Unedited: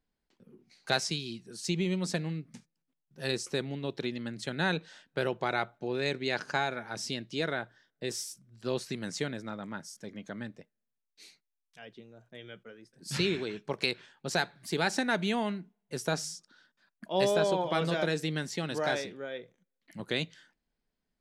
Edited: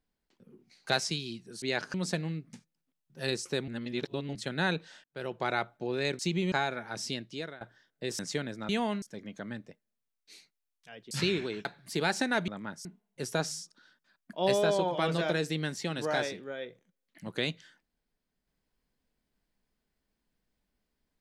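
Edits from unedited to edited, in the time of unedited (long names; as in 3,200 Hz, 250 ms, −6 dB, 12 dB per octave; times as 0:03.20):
0:01.62–0:01.95: swap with 0:06.20–0:06.52
0:03.69–0:04.36: reverse
0:05.05–0:05.48: fade in linear
0:07.15–0:07.61: fade out, to −21.5 dB
0:08.19–0:09.05: remove
0:09.55–0:09.92: swap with 0:15.25–0:15.58
0:12.01–0:13.08: remove
0:13.62–0:14.42: remove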